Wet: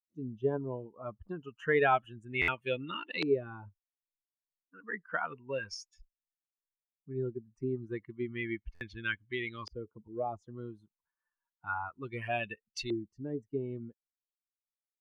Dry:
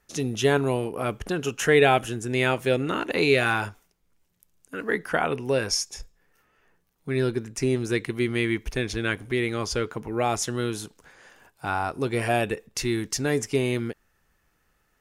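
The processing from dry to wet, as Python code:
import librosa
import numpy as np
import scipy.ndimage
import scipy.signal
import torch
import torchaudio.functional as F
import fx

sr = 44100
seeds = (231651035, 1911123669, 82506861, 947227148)

y = fx.bin_expand(x, sr, power=2.0)
y = fx.filter_lfo_lowpass(y, sr, shape='saw_up', hz=0.31, low_hz=390.0, high_hz=3800.0, q=1.6)
y = fx.tilt_shelf(y, sr, db=-4.5, hz=1200.0)
y = fx.buffer_glitch(y, sr, at_s=(2.41, 8.74), block=512, repeats=5)
y = y * librosa.db_to_amplitude(-4.5)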